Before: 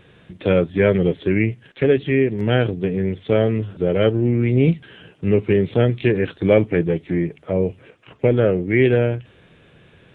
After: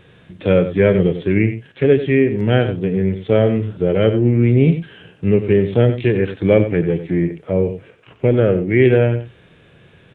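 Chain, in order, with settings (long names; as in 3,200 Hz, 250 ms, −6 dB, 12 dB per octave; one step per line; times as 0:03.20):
harmonic and percussive parts rebalanced percussive −5 dB
slap from a distant wall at 16 metres, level −11 dB
level +3.5 dB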